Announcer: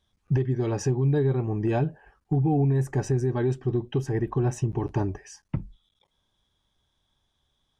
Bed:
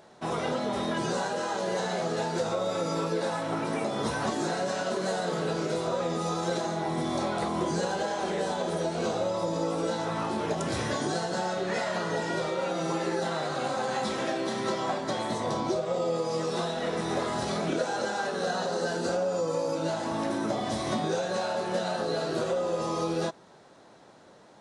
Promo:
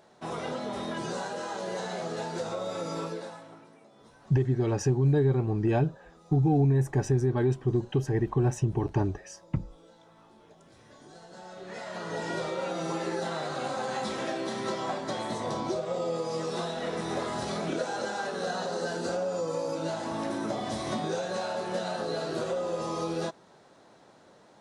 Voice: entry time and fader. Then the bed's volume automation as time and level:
4.00 s, -0.5 dB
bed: 3.05 s -4.5 dB
3.77 s -26.5 dB
10.79 s -26.5 dB
12.27 s -2.5 dB

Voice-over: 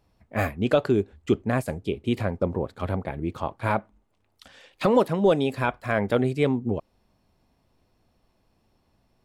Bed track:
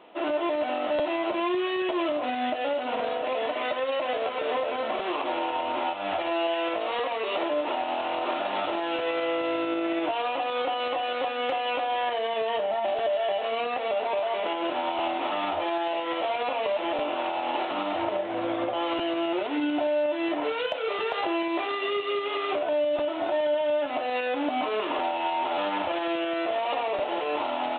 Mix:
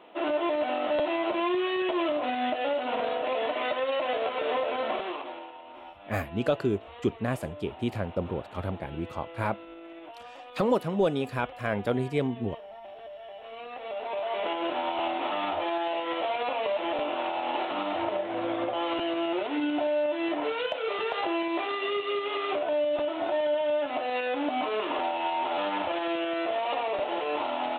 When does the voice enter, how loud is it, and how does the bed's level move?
5.75 s, -5.0 dB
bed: 4.93 s -0.5 dB
5.57 s -17.5 dB
13.27 s -17.5 dB
14.41 s -1.5 dB

